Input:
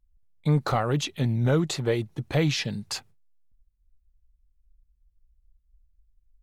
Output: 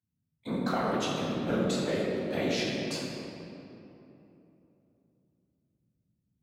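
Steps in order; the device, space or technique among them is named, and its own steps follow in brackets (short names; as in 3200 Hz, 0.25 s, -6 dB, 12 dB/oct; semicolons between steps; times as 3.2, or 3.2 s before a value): whispering ghost (whisperiser; HPF 240 Hz 12 dB/oct; reverb RT60 3.1 s, pre-delay 9 ms, DRR -4 dB); gain -8 dB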